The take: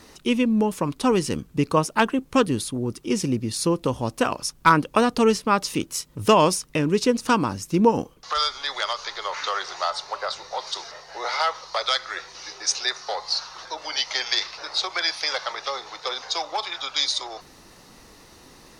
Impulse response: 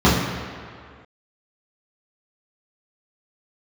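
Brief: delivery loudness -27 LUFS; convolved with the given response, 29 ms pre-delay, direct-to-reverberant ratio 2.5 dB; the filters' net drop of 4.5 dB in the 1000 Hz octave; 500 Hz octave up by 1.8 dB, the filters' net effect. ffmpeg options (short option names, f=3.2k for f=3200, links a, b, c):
-filter_complex "[0:a]equalizer=f=500:t=o:g=3.5,equalizer=f=1k:t=o:g=-6.5,asplit=2[a][b];[1:a]atrim=start_sample=2205,adelay=29[c];[b][c]afir=irnorm=-1:irlink=0,volume=-27dB[d];[a][d]amix=inputs=2:normalize=0,volume=-8dB"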